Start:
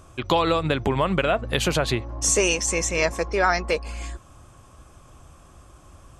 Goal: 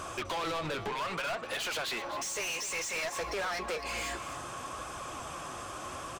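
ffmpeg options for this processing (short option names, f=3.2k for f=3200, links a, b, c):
-filter_complex "[0:a]asettb=1/sr,asplit=3[a][b][c];[a]atrim=end=0.894[d];[b]atrim=start=0.89:end=3.19,asetpts=PTS-STARTPTS,afade=t=in:d=0.004:c=qsin,afade=t=out:st=2.296:d=0.004:c=qsin,highpass=f=980:p=1[e];[c]atrim=start=3.186[f];[d][e]acrossfade=d=0.004:c1=hsin:c2=qsin[g];[g][f]acrossfade=d=0.004:c1=qsin:c2=hsin,acompressor=threshold=-32dB:ratio=12,flanger=delay=0.6:depth=9.6:regen=68:speed=0.61:shape=triangular,asplit=2[h][i];[i]highpass=f=720:p=1,volume=35dB,asoftclip=type=tanh:threshold=-19dB[j];[h][j]amix=inputs=2:normalize=0,lowpass=f=4.9k:p=1,volume=-6dB,aecho=1:1:252:0.224,volume=-7.5dB"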